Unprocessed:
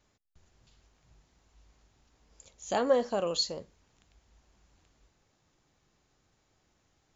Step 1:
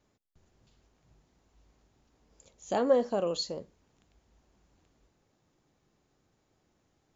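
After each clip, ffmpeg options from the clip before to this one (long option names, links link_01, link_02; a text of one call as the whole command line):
ffmpeg -i in.wav -af "equalizer=frequency=290:width=0.38:gain=7.5,volume=-5dB" out.wav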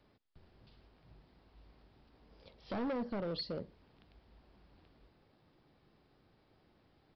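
ffmpeg -i in.wav -filter_complex "[0:a]acrossover=split=280[link_01][link_02];[link_02]acompressor=threshold=-41dB:ratio=5[link_03];[link_01][link_03]amix=inputs=2:normalize=0,aresample=11025,asoftclip=type=hard:threshold=-38dB,aresample=44100,volume=4dB" out.wav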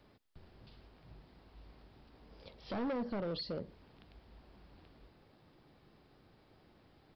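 ffmpeg -i in.wav -af "alimiter=level_in=14dB:limit=-24dB:level=0:latency=1:release=70,volume=-14dB,volume=4.5dB" out.wav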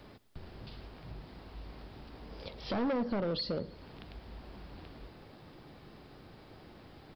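ffmpeg -i in.wav -af "acompressor=threshold=-53dB:ratio=1.5,aecho=1:1:107|214|321|428:0.0794|0.0469|0.0277|0.0163,volume=11dB" out.wav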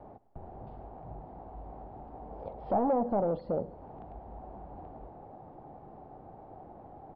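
ffmpeg -i in.wav -af "lowpass=frequency=770:width_type=q:width=4.9" out.wav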